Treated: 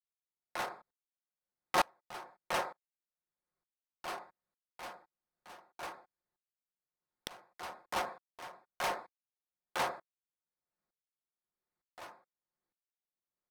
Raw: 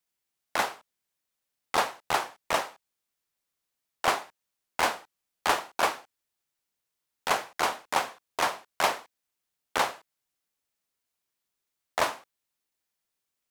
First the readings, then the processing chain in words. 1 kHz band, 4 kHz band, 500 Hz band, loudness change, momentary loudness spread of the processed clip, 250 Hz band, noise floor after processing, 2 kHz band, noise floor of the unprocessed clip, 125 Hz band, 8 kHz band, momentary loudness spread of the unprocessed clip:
-10.0 dB, -11.0 dB, -9.5 dB, -10.0 dB, 18 LU, -8.5 dB, under -85 dBFS, -11.0 dB, -84 dBFS, -8.0 dB, -12.0 dB, 9 LU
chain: Wiener smoothing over 15 samples; notch 7200 Hz, Q 7.3; comb 5.6 ms, depth 41%; soft clip -24.5 dBFS, distortion -8 dB; dB-ramp tremolo swelling 1.1 Hz, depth 28 dB; gain +3 dB

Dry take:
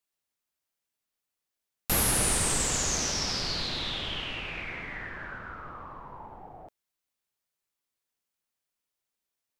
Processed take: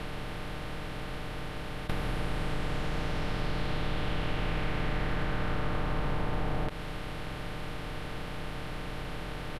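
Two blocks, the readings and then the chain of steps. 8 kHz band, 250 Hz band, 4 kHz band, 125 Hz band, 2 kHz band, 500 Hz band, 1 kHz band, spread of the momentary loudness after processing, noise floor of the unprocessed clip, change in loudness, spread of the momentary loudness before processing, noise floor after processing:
-24.5 dB, +4.0 dB, -8.0 dB, +6.0 dB, -1.0 dB, +3.5 dB, +2.0 dB, 6 LU, under -85 dBFS, -7.5 dB, 20 LU, -38 dBFS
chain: per-bin compression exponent 0.2; low shelf 93 Hz +6 dB; comb 6.6 ms, depth 50%; compressor 5:1, threshold -24 dBFS, peak gain reduction 9.5 dB; air absorption 470 m

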